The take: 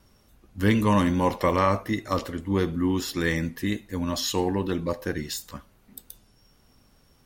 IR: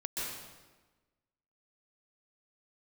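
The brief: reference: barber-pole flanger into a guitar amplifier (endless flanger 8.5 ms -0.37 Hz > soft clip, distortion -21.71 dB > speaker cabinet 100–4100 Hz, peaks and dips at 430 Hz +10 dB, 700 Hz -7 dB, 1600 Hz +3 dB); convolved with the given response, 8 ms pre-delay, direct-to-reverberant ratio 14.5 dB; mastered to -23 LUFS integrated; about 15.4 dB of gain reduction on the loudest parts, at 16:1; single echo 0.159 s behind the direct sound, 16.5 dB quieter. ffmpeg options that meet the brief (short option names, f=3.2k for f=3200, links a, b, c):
-filter_complex "[0:a]acompressor=threshold=-32dB:ratio=16,aecho=1:1:159:0.15,asplit=2[a][b];[1:a]atrim=start_sample=2205,adelay=8[c];[b][c]afir=irnorm=-1:irlink=0,volume=-18dB[d];[a][d]amix=inputs=2:normalize=0,asplit=2[e][f];[f]adelay=8.5,afreqshift=-0.37[g];[e][g]amix=inputs=2:normalize=1,asoftclip=threshold=-27.5dB,highpass=100,equalizer=f=430:t=q:w=4:g=10,equalizer=f=700:t=q:w=4:g=-7,equalizer=f=1.6k:t=q:w=4:g=3,lowpass=f=4.1k:w=0.5412,lowpass=f=4.1k:w=1.3066,volume=17dB"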